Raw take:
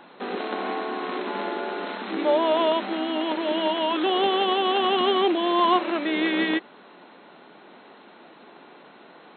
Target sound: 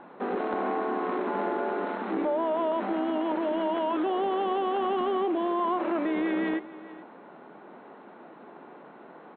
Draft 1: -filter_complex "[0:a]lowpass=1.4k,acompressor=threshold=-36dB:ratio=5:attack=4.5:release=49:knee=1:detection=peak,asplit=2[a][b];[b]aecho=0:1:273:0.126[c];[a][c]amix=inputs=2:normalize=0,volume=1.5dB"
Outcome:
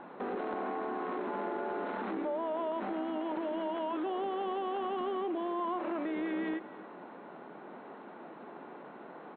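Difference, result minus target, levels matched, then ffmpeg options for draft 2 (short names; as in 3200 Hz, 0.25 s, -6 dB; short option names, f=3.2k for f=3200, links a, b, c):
echo 0.159 s early; compressor: peak gain reduction +7 dB
-filter_complex "[0:a]lowpass=1.4k,acompressor=threshold=-27dB:ratio=5:attack=4.5:release=49:knee=1:detection=peak,asplit=2[a][b];[b]aecho=0:1:432:0.126[c];[a][c]amix=inputs=2:normalize=0,volume=1.5dB"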